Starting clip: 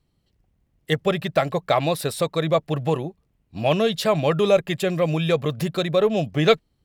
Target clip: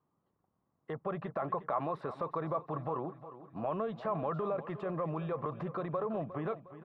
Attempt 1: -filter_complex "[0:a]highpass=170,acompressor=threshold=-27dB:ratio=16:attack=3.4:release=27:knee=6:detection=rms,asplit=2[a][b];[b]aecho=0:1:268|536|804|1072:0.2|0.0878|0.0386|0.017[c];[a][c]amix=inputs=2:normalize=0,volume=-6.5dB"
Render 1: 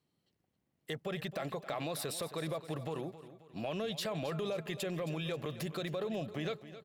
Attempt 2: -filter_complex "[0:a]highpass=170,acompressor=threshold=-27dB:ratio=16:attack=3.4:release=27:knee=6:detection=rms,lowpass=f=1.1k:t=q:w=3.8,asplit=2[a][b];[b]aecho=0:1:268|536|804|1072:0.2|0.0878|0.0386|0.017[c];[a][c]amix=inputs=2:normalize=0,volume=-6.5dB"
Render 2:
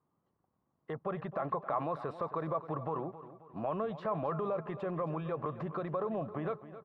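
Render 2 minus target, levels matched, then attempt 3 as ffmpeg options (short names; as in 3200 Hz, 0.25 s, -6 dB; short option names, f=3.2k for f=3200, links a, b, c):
echo 90 ms early
-filter_complex "[0:a]highpass=170,acompressor=threshold=-27dB:ratio=16:attack=3.4:release=27:knee=6:detection=rms,lowpass=f=1.1k:t=q:w=3.8,asplit=2[a][b];[b]aecho=0:1:358|716|1074|1432:0.2|0.0878|0.0386|0.017[c];[a][c]amix=inputs=2:normalize=0,volume=-6.5dB"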